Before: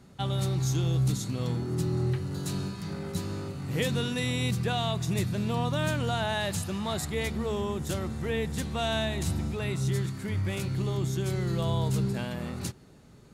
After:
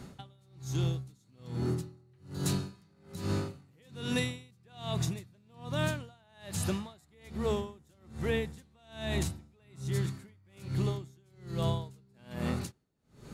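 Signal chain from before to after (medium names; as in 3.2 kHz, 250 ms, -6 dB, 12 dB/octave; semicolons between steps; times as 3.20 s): compression, threshold -34 dBFS, peak gain reduction 11 dB; logarithmic tremolo 1.2 Hz, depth 35 dB; trim +8 dB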